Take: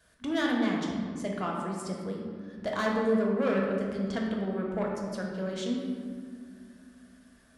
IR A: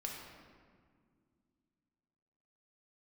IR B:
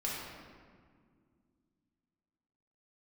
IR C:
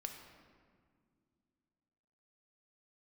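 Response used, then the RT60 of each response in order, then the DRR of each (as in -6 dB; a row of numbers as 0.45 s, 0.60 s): A; 2.0 s, 2.0 s, no single decay rate; -1.5 dB, -6.0 dB, 3.5 dB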